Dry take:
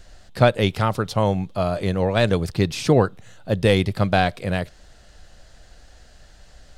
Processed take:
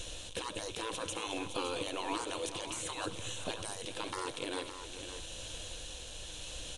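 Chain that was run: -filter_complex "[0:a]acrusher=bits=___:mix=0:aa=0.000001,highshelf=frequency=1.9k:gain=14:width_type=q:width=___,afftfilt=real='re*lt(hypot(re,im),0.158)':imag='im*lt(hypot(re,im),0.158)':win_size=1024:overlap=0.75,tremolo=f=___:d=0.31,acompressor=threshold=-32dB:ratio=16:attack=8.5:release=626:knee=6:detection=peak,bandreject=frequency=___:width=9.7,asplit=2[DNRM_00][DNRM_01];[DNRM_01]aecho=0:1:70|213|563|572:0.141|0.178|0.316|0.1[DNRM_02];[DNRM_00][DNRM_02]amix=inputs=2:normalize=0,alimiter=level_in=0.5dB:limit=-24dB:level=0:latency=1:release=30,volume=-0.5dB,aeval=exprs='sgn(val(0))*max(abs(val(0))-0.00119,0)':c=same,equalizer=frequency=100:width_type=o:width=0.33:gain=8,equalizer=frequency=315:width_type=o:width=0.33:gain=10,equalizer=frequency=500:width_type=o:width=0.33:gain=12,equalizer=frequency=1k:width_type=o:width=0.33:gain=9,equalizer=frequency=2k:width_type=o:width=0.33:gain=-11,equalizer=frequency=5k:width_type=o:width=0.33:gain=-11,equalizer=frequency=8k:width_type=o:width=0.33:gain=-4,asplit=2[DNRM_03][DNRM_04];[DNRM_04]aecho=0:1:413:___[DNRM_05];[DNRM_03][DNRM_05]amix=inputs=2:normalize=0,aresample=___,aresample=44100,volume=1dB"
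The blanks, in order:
8, 1.5, 0.9, 4.5k, 0.178, 22050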